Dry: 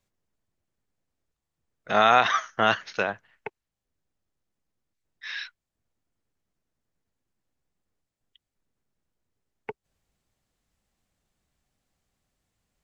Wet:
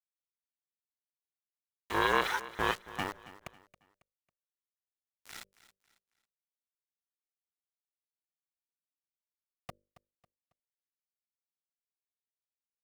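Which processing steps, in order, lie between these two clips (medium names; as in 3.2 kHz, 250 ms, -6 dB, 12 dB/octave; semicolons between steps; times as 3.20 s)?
small samples zeroed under -29.5 dBFS; hum notches 50/100/150/200/250/300 Hz; ring modulator 290 Hz; feedback delay 274 ms, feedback 35%, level -17 dB; trim -6 dB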